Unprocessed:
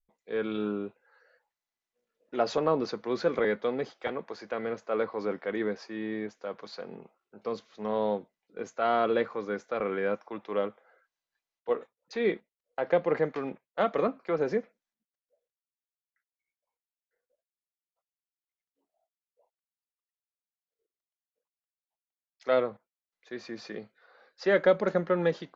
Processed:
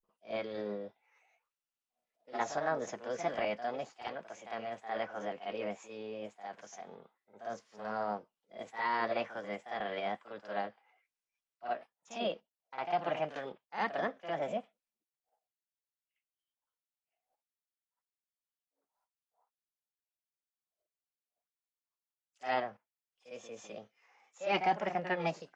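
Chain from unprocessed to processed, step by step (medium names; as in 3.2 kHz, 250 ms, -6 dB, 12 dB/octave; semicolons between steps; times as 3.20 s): reverse echo 54 ms -9.5 dB; formant shift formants +6 st; trim -7.5 dB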